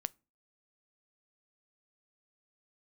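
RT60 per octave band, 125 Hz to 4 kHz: 0.45, 0.40, 0.35, 0.30, 0.25, 0.20 s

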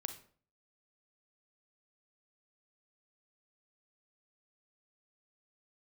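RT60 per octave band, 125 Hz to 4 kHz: 0.60, 0.55, 0.50, 0.45, 0.40, 0.35 s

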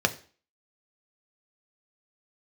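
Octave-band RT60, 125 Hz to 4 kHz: 0.35, 0.45, 0.40, 0.40, 0.40, 0.40 s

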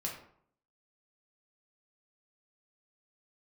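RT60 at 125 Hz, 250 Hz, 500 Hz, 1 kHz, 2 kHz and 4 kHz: 0.70, 0.70, 0.65, 0.65, 0.45, 0.35 s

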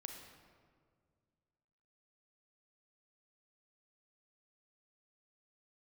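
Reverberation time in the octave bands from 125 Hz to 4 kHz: 2.6, 2.4, 2.1, 1.8, 1.4, 1.1 s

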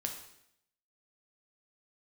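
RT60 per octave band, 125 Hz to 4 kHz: 0.80, 0.80, 0.80, 0.70, 0.75, 0.75 s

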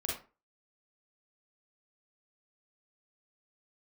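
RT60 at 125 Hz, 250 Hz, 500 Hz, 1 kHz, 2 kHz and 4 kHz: 0.30, 0.35, 0.35, 0.35, 0.30, 0.20 s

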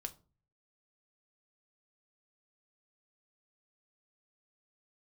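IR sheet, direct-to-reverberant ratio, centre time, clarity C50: 6.0 dB, 4 ms, 19.0 dB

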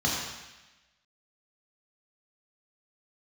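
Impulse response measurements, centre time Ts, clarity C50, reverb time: 74 ms, 0.5 dB, 1.1 s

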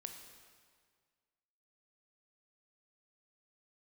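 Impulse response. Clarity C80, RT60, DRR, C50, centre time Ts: 7.5 dB, 1.8 s, 4.5 dB, 6.0 dB, 38 ms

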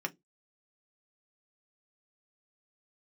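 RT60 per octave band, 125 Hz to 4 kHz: 0.25, 0.25, 0.20, 0.10, 0.15, 0.15 s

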